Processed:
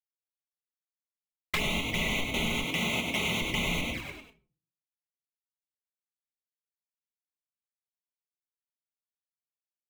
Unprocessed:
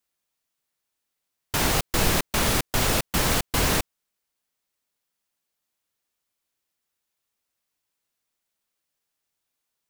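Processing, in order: band-swap scrambler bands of 2000 Hz; bit-crush 6-bit; tone controls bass +7 dB, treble -12 dB; comb 4.7 ms, depth 52%; on a send: frequency-shifting echo 98 ms, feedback 38%, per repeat +48 Hz, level -6 dB; on the sum: shoebox room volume 220 m³, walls furnished, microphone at 0.99 m; envelope flanger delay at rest 6.3 ms, full sweep at -21.5 dBFS; 2.64–3.41 HPF 89 Hz 12 dB/oct; compressor 5:1, threshold -37 dBFS, peak gain reduction 15 dB; gain +8.5 dB

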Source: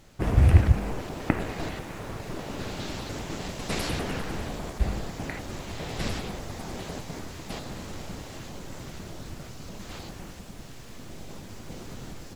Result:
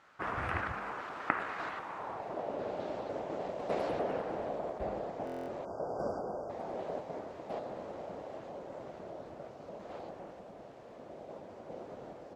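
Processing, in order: band-pass sweep 1300 Hz -> 600 Hz, 1.63–2.52; spectral delete 5.65–6.49, 1600–4600 Hz; stuck buffer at 5.25, samples 1024, times 9; gain +5.5 dB

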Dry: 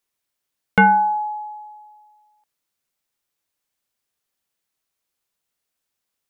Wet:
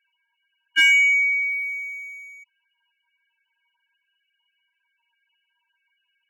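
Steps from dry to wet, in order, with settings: per-bin compression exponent 0.6; inverted band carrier 3100 Hz; loudest bins only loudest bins 4; sample leveller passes 1; gain -3 dB

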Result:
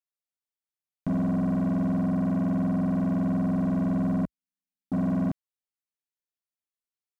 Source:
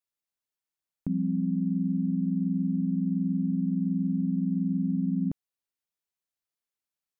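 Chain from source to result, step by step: 4.25–4.92 inverse Chebyshev band-stop 160–450 Hz, stop band 70 dB; sample leveller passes 3; gain -2.5 dB

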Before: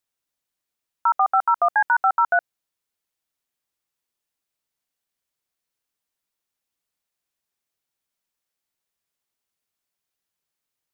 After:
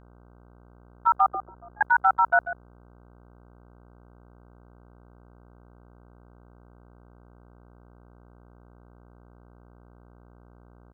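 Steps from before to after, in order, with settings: gate -20 dBFS, range -14 dB; 1.28–1.81 auto-wah 350–1400 Hz, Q 12, down, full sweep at -25 dBFS; outdoor echo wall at 24 m, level -12 dB; buzz 60 Hz, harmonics 26, -52 dBFS -5 dB/oct; gain -1 dB

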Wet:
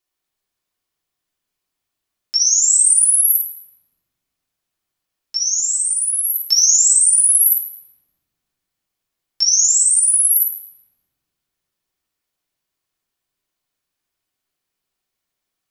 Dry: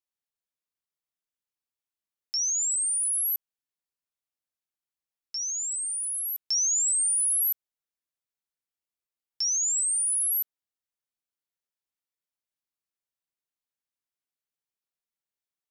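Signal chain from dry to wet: 2.65–3.32 comb 5.6 ms, depth 69%; reverb RT60 1.5 s, pre-delay 3 ms, DRR -5 dB; gain +7.5 dB

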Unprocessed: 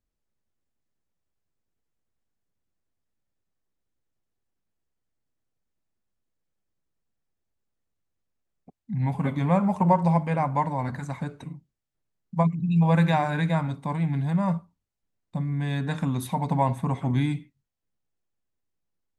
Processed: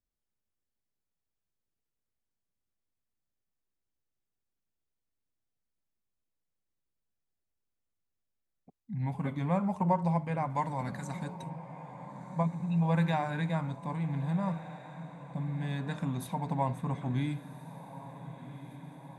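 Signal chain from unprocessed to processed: 10.5–11.5 high shelf 2800 Hz +9.5 dB; diffused feedback echo 1.432 s, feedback 65%, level -14 dB; gain -7.5 dB

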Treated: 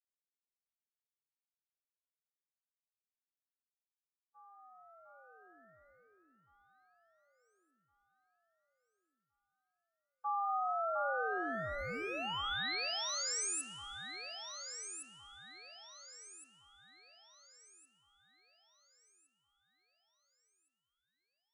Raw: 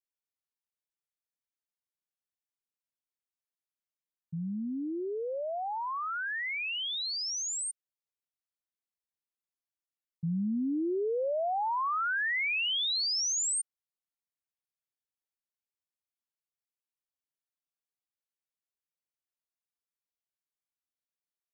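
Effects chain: Wiener smoothing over 15 samples; gate -32 dBFS, range -56 dB; dynamic EQ 900 Hz, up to -6 dB, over -48 dBFS, Q 1.4; ring modulator 1000 Hz; echo with dull and thin repeats by turns 0.707 s, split 1400 Hz, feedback 62%, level -4.5 dB; plate-style reverb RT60 2 s, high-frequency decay 0.8×, DRR 17 dB; gain -1 dB

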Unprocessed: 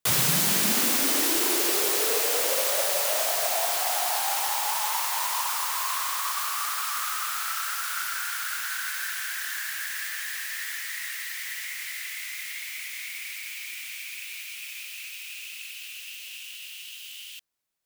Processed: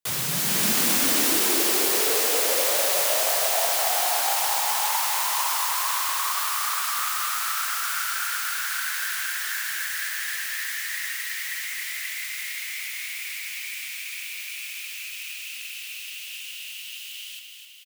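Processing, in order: de-hum 58.26 Hz, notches 28; AGC gain up to 7 dB; feedback echo 0.258 s, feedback 60%, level -6.5 dB; gain -5 dB

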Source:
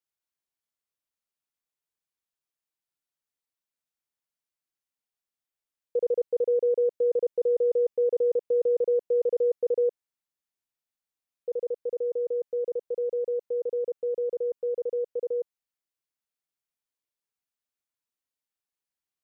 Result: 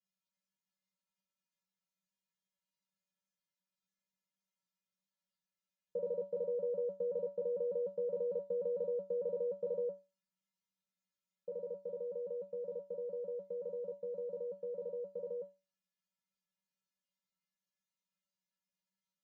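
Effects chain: bell 170 Hz +11 dB 0.42 oct; resonator 190 Hz, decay 0.27 s, harmonics odd, mix 100%; gain +12.5 dB; AAC 64 kbps 16000 Hz

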